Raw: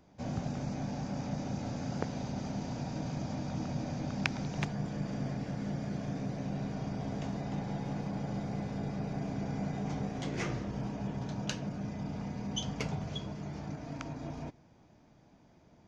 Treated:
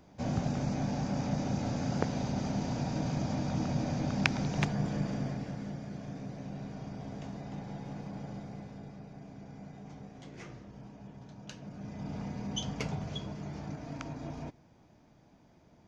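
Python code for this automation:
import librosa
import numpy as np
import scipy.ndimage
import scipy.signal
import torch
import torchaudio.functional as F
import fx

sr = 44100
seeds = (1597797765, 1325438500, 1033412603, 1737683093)

y = fx.gain(x, sr, db=fx.line((4.95, 4.0), (5.83, -5.0), (8.25, -5.0), (9.1, -12.0), (11.41, -12.0), (12.14, 0.0)))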